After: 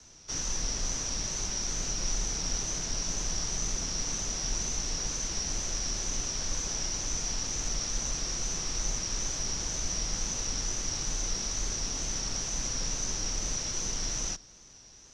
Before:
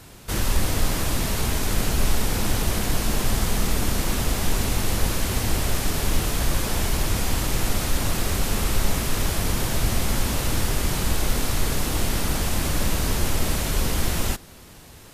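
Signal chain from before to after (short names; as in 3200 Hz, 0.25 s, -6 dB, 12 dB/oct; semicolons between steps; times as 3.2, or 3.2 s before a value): frequency shift -43 Hz; ladder low-pass 6000 Hz, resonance 90%; wow and flutter 40 cents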